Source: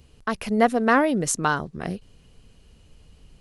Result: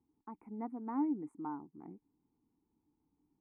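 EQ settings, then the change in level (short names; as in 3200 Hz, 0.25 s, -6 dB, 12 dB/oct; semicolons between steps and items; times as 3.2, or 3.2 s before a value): vowel filter u; Chebyshev band-stop 1600–8800 Hz, order 3; high shelf 6200 Hz -10.5 dB; -6.5 dB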